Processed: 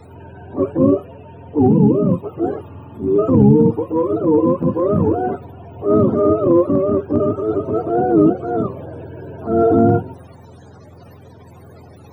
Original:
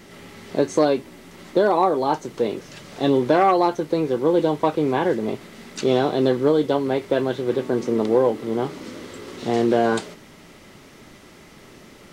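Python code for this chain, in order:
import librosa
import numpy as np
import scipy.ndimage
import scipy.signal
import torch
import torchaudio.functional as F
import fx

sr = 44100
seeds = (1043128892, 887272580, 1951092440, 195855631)

p1 = fx.octave_mirror(x, sr, pivot_hz=400.0)
p2 = fx.spec_repair(p1, sr, seeds[0], start_s=2.7, length_s=0.46, low_hz=440.0, high_hz=2000.0, source='before')
p3 = fx.transient(p2, sr, attack_db=-7, sustain_db=1)
p4 = p3 + fx.echo_wet_highpass(p3, sr, ms=91, feedback_pct=85, hz=3800.0, wet_db=-18.0, dry=0)
y = p4 * 10.0 ** (7.5 / 20.0)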